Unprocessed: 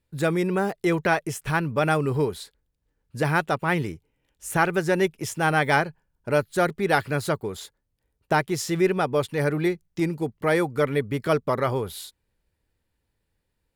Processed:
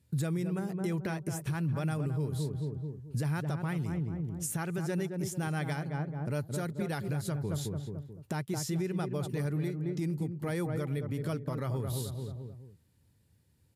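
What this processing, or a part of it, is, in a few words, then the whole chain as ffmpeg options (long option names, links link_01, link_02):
podcast mastering chain: -filter_complex "[0:a]highpass=frequency=84:width=0.5412,highpass=frequency=84:width=1.3066,bass=frequency=250:gain=15,treble=frequency=4000:gain=9,asplit=2[link_01][link_02];[link_02]adelay=218,lowpass=frequency=920:poles=1,volume=-6dB,asplit=2[link_03][link_04];[link_04]adelay=218,lowpass=frequency=920:poles=1,volume=0.37,asplit=2[link_05][link_06];[link_06]adelay=218,lowpass=frequency=920:poles=1,volume=0.37,asplit=2[link_07][link_08];[link_08]adelay=218,lowpass=frequency=920:poles=1,volume=0.37[link_09];[link_01][link_03][link_05][link_07][link_09]amix=inputs=5:normalize=0,acompressor=threshold=-31dB:ratio=2,alimiter=level_in=0.5dB:limit=-24dB:level=0:latency=1:release=431,volume=-0.5dB" -ar 32000 -c:a libmp3lame -b:a 96k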